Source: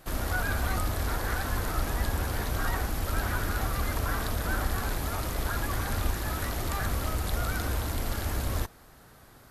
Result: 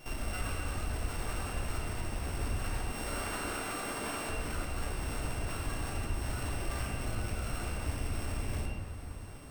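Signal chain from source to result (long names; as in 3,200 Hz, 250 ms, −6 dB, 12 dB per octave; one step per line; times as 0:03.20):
samples sorted by size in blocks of 16 samples
0:02.90–0:04.29: high-pass filter 260 Hz 12 dB per octave
downward compressor, threshold −35 dBFS, peak gain reduction 12.5 dB
hard clipping −35 dBFS, distortion −14 dB
convolution reverb RT60 2.2 s, pre-delay 7 ms, DRR −1.5 dB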